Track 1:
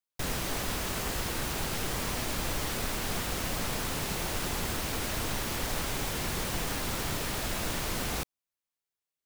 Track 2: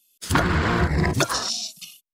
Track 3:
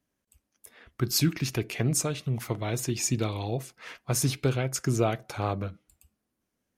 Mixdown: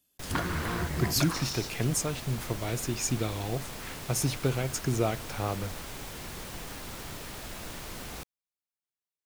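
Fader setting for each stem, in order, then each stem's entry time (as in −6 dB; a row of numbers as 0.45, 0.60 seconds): −8.0, −11.0, −2.5 decibels; 0.00, 0.00, 0.00 seconds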